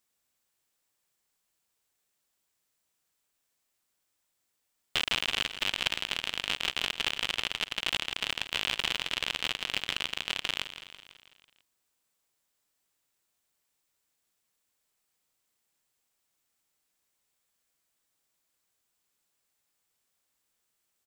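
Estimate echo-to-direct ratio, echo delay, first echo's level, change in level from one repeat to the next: -10.0 dB, 165 ms, -12.0 dB, -4.5 dB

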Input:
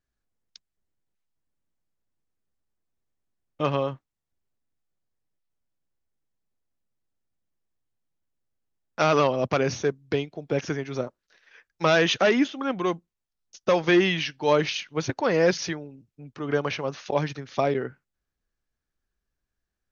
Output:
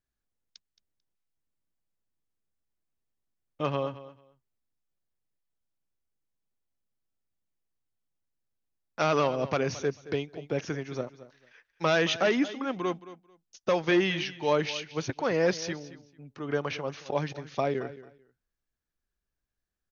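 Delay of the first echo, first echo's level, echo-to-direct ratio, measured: 221 ms, -16.0 dB, -16.0 dB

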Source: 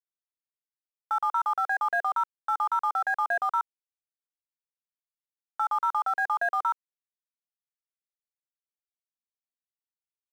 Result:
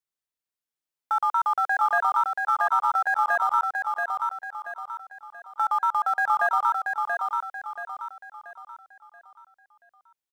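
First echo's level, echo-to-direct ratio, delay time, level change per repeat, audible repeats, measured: -4.0 dB, -3.0 dB, 681 ms, -8.0 dB, 4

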